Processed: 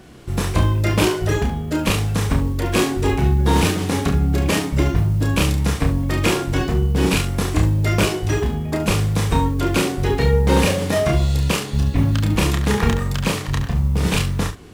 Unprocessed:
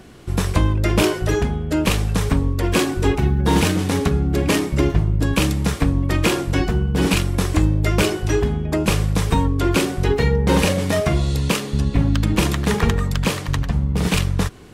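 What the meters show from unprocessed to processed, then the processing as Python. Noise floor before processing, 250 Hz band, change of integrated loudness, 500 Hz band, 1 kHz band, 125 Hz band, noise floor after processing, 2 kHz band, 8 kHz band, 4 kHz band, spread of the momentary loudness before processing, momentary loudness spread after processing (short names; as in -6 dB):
-29 dBFS, -1.0 dB, 0.0 dB, 0.0 dB, +1.0 dB, +1.0 dB, -28 dBFS, 0.0 dB, +0.5 dB, 0.0 dB, 4 LU, 4 LU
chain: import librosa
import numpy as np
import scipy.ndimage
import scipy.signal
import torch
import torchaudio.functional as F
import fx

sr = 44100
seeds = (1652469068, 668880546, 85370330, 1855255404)

y = fx.mod_noise(x, sr, seeds[0], snr_db=33)
y = fx.room_early_taps(y, sr, ms=(30, 70), db=(-4.0, -10.5))
y = y * 10.0 ** (-1.5 / 20.0)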